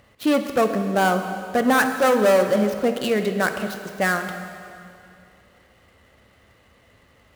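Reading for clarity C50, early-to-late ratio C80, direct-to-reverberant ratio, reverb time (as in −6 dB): 7.5 dB, 8.5 dB, 6.5 dB, 2.5 s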